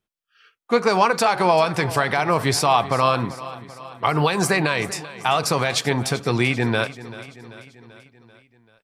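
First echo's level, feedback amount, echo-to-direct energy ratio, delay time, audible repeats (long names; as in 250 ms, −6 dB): −16.5 dB, 57%, −15.0 dB, 388 ms, 4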